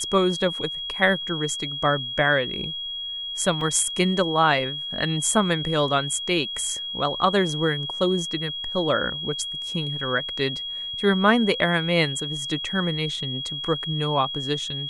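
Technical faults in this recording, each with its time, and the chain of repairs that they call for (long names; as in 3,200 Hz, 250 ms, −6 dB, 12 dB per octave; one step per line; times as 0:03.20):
whistle 3,300 Hz −29 dBFS
0:03.61: drop-out 2.5 ms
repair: notch filter 3,300 Hz, Q 30
repair the gap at 0:03.61, 2.5 ms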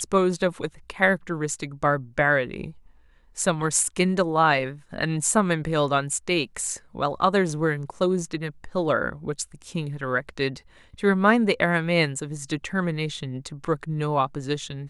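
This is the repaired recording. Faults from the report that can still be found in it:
none of them is left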